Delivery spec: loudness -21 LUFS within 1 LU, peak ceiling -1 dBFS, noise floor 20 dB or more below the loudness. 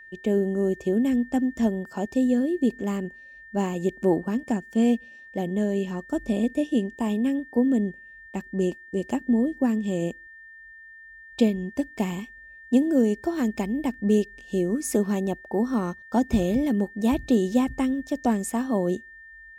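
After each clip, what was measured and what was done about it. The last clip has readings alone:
steady tone 1800 Hz; tone level -44 dBFS; loudness -25.5 LUFS; peak -9.0 dBFS; loudness target -21.0 LUFS
-> notch 1800 Hz, Q 30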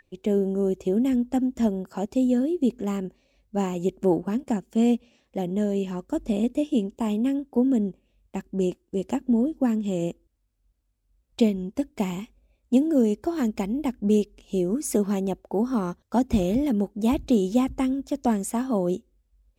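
steady tone none; loudness -25.5 LUFS; peak -9.0 dBFS; loudness target -21.0 LUFS
-> gain +4.5 dB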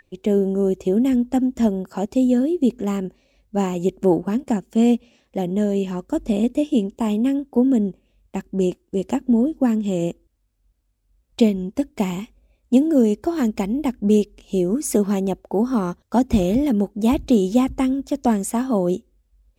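loudness -21.0 LUFS; peak -4.5 dBFS; noise floor -67 dBFS

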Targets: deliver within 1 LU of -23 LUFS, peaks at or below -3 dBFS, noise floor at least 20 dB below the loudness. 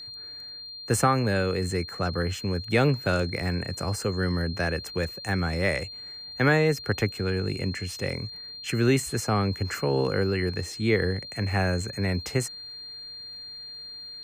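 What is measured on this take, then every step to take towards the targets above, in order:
ticks 44/s; steady tone 4200 Hz; tone level -38 dBFS; loudness -27.0 LUFS; peak -10.0 dBFS; loudness target -23.0 LUFS
-> de-click; notch 4200 Hz, Q 30; gain +4 dB

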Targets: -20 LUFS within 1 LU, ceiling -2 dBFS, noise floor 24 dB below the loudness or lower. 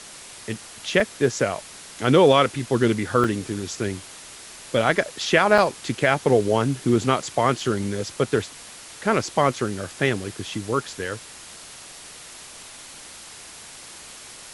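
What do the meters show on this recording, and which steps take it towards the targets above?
dropouts 5; longest dropout 2.7 ms; noise floor -42 dBFS; noise floor target -46 dBFS; loudness -22.0 LUFS; peak -3.0 dBFS; loudness target -20.0 LUFS
-> interpolate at 1/3.24/5.58/7.6/10.24, 2.7 ms; denoiser 6 dB, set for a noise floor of -42 dBFS; gain +2 dB; limiter -2 dBFS

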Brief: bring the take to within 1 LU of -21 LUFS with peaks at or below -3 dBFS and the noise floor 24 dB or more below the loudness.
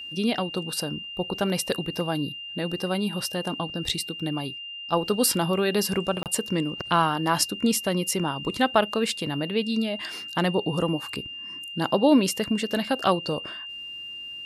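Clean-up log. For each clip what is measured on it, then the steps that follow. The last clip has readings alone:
dropouts 1; longest dropout 28 ms; steady tone 2800 Hz; tone level -35 dBFS; loudness -26.0 LUFS; peak -6.0 dBFS; loudness target -21.0 LUFS
-> interpolate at 6.23, 28 ms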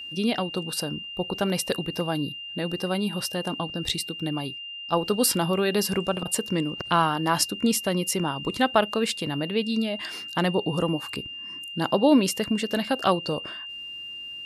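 dropouts 0; steady tone 2800 Hz; tone level -35 dBFS
-> notch 2800 Hz, Q 30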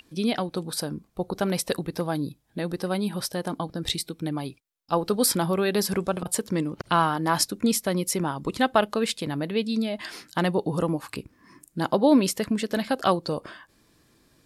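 steady tone none; loudness -26.0 LUFS; peak -6.0 dBFS; loudness target -21.0 LUFS
-> gain +5 dB; limiter -3 dBFS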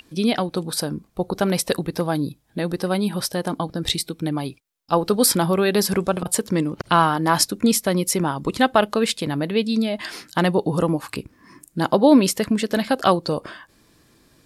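loudness -21.5 LUFS; peak -3.0 dBFS; noise floor -59 dBFS

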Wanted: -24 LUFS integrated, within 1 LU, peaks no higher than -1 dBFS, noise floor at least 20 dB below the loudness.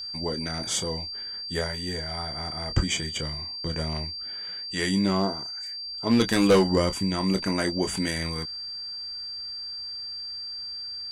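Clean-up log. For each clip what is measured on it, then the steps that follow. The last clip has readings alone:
clipped 0.3%; flat tops at -13.0 dBFS; steady tone 4700 Hz; tone level -33 dBFS; loudness -27.5 LUFS; peak -13.0 dBFS; loudness target -24.0 LUFS
-> clip repair -13 dBFS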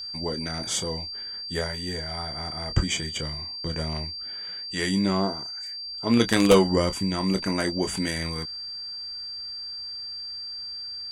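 clipped 0.0%; steady tone 4700 Hz; tone level -33 dBFS
-> notch 4700 Hz, Q 30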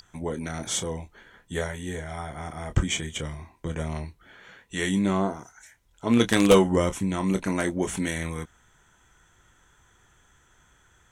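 steady tone none; loudness -26.5 LUFS; peak -4.0 dBFS; loudness target -24.0 LUFS
-> gain +2.5 dB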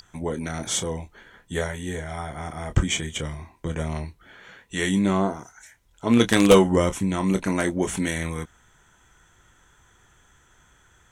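loudness -24.0 LUFS; peak -1.5 dBFS; noise floor -60 dBFS

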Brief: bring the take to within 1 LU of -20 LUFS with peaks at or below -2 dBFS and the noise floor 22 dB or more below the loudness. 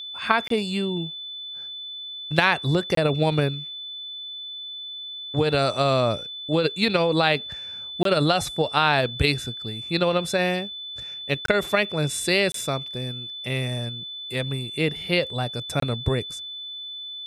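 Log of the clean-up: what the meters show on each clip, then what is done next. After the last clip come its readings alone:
dropouts 6; longest dropout 23 ms; steady tone 3500 Hz; tone level -33 dBFS; loudness -24.5 LUFS; peak -2.0 dBFS; loudness target -20.0 LUFS
-> interpolate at 0.48/2.95/8.03/11.46/12.52/15.8, 23 ms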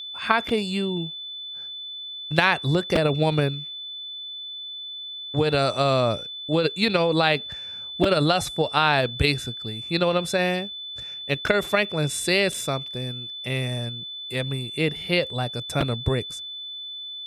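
dropouts 0; steady tone 3500 Hz; tone level -33 dBFS
-> notch 3500 Hz, Q 30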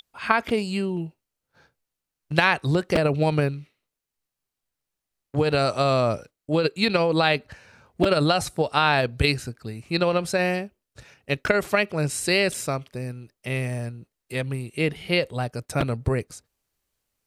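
steady tone none; loudness -24.0 LUFS; peak -2.0 dBFS; loudness target -20.0 LUFS
-> gain +4 dB; limiter -2 dBFS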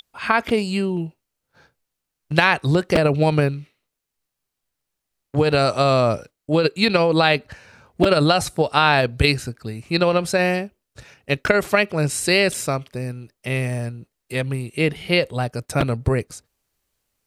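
loudness -20.0 LUFS; peak -2.0 dBFS; noise floor -82 dBFS

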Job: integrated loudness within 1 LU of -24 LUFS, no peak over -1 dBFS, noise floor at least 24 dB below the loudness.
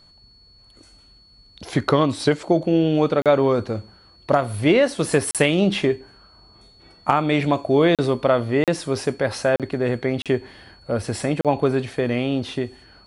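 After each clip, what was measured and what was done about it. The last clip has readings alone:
dropouts 7; longest dropout 37 ms; steady tone 4400 Hz; tone level -51 dBFS; loudness -21.0 LUFS; peak -2.5 dBFS; loudness target -24.0 LUFS
-> interpolate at 3.22/5.31/7.95/8.64/9.56/10.22/11.41, 37 ms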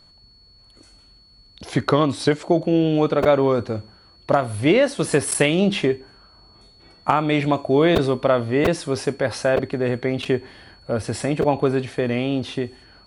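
dropouts 0; steady tone 4400 Hz; tone level -51 dBFS
-> notch 4400 Hz, Q 30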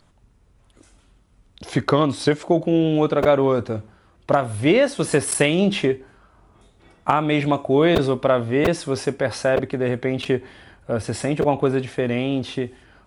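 steady tone none; loudness -21.0 LUFS; peak -2.5 dBFS; loudness target -24.0 LUFS
-> gain -3 dB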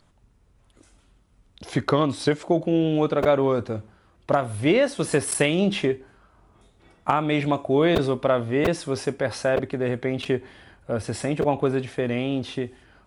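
loudness -24.0 LUFS; peak -5.5 dBFS; noise floor -60 dBFS

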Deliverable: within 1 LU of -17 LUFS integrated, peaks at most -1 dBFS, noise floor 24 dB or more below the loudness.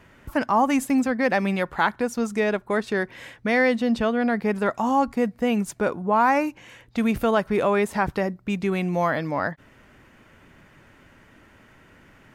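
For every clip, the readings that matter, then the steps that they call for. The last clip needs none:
loudness -23.5 LUFS; peak -8.5 dBFS; loudness target -17.0 LUFS
-> gain +6.5 dB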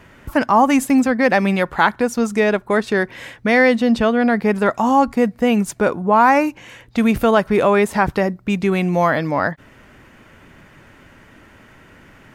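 loudness -17.0 LUFS; peak -2.0 dBFS; noise floor -48 dBFS

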